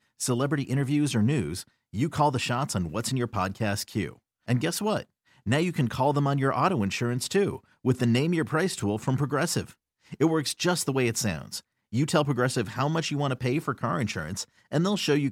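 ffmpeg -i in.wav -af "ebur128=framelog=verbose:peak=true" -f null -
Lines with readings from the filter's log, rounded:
Integrated loudness:
  I:         -27.0 LUFS
  Threshold: -37.3 LUFS
Loudness range:
  LRA:         2.8 LU
  Threshold: -47.3 LUFS
  LRA low:   -28.7 LUFS
  LRA high:  -26.0 LUFS
True peak:
  Peak:       -9.9 dBFS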